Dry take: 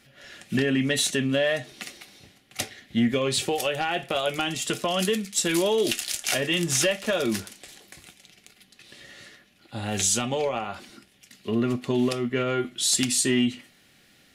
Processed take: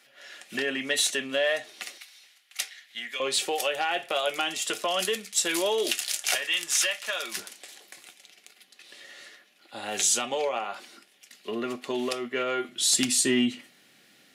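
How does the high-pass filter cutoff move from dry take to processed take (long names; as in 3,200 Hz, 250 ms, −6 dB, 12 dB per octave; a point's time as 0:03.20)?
510 Hz
from 0:01.98 1,500 Hz
from 0:03.20 480 Hz
from 0:06.35 1,100 Hz
from 0:07.37 430 Hz
from 0:12.69 200 Hz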